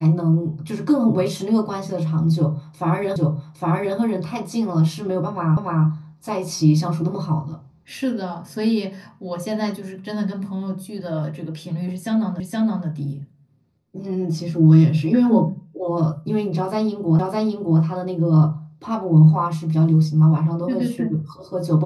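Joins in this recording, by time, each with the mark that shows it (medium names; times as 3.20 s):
3.16 s: repeat of the last 0.81 s
5.57 s: repeat of the last 0.29 s
12.40 s: repeat of the last 0.47 s
17.19 s: repeat of the last 0.61 s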